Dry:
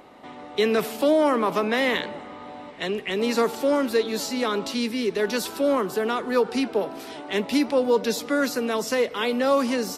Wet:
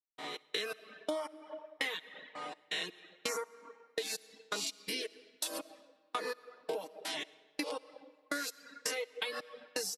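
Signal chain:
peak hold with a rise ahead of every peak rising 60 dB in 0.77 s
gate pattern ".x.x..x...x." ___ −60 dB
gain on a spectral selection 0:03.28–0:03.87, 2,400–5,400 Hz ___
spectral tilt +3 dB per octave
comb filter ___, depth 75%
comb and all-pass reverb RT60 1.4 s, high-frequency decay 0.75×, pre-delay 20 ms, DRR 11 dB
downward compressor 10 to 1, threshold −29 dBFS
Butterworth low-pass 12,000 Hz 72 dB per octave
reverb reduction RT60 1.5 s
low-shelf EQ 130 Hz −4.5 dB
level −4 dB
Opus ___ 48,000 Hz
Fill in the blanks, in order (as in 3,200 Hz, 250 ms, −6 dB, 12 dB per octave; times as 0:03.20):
83 BPM, −12 dB, 6.4 ms, 96 kbit/s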